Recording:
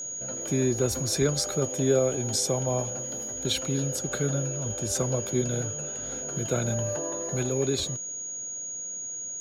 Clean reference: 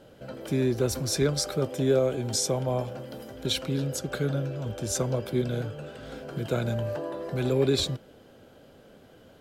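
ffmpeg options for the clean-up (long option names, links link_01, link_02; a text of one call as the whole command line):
ffmpeg -i in.wav -af "bandreject=frequency=6700:width=30,asetnsamples=nb_out_samples=441:pad=0,asendcmd='7.43 volume volume 3.5dB',volume=0dB" out.wav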